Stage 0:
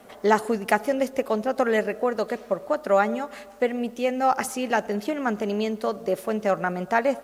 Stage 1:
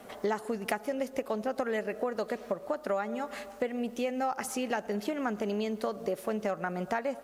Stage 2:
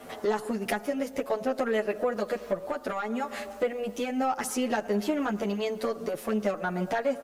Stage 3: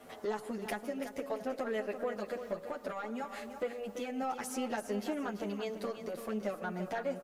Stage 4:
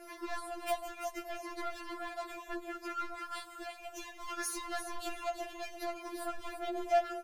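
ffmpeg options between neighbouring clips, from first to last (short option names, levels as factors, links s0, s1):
-af "acompressor=threshold=0.0355:ratio=5"
-filter_complex "[0:a]asoftclip=type=tanh:threshold=0.0708,asplit=2[s0][s1];[s1]adelay=8.8,afreqshift=-0.69[s2];[s0][s2]amix=inputs=2:normalize=1,volume=2.37"
-af "aecho=1:1:337|674|1011:0.335|0.0938|0.0263,volume=0.376"
-af "asoftclip=type=hard:threshold=0.015,afftfilt=real='re*4*eq(mod(b,16),0)':imag='im*4*eq(mod(b,16),0)':win_size=2048:overlap=0.75,volume=2.24"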